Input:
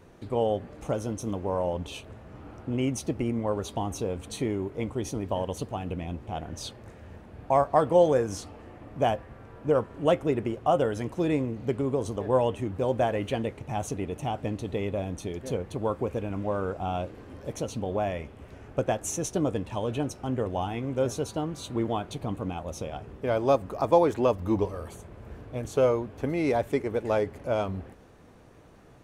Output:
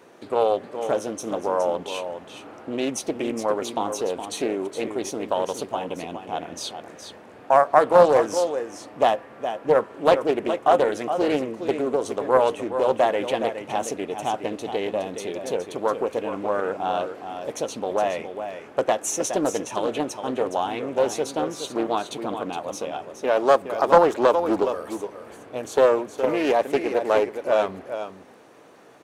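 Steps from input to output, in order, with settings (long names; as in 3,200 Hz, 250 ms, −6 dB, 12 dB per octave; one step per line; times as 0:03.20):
high-pass filter 330 Hz 12 dB per octave
single-tap delay 416 ms −9 dB
highs frequency-modulated by the lows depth 0.28 ms
level +6.5 dB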